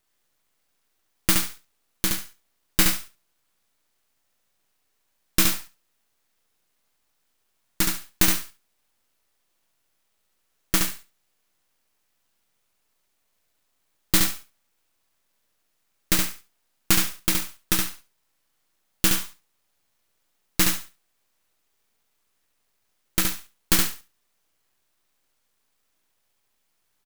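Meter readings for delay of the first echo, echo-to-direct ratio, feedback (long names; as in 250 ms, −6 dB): 70 ms, −4.0 dB, 18%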